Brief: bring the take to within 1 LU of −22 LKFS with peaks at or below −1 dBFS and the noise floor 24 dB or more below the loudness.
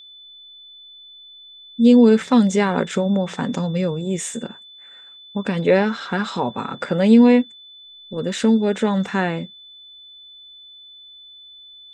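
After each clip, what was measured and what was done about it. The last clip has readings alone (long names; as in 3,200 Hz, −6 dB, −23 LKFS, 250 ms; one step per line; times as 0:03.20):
interfering tone 3,500 Hz; level of the tone −41 dBFS; integrated loudness −18.5 LKFS; sample peak −3.5 dBFS; target loudness −22.0 LKFS
→ notch filter 3,500 Hz, Q 30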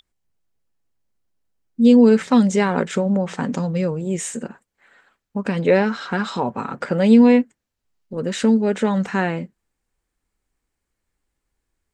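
interfering tone none found; integrated loudness −18.5 LKFS; sample peak −3.5 dBFS; target loudness −22.0 LKFS
→ level −3.5 dB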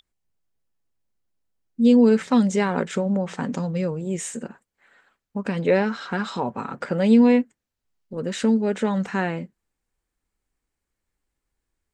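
integrated loudness −22.0 LKFS; sample peak −7.0 dBFS; background noise floor −83 dBFS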